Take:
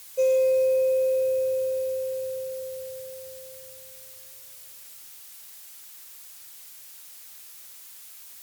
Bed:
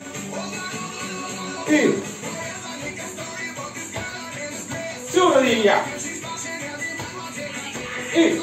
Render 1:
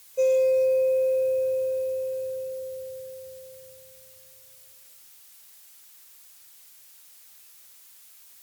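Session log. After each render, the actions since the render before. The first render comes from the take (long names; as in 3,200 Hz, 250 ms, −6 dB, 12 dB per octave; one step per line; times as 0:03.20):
noise reduction from a noise print 6 dB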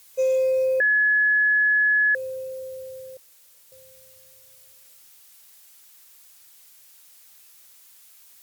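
0:00.80–0:02.15: beep over 1,700 Hz −16 dBFS
0:03.17–0:03.72: fill with room tone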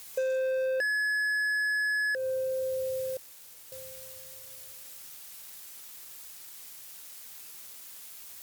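leveller curve on the samples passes 2
downward compressor 6 to 1, threshold −29 dBFS, peak gain reduction 10.5 dB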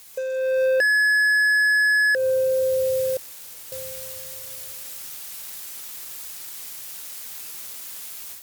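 automatic gain control gain up to 10 dB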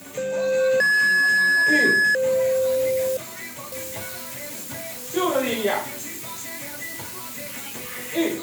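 mix in bed −6.5 dB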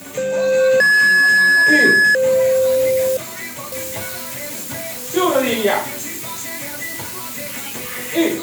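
level +6 dB
brickwall limiter −3 dBFS, peak gain reduction 1.5 dB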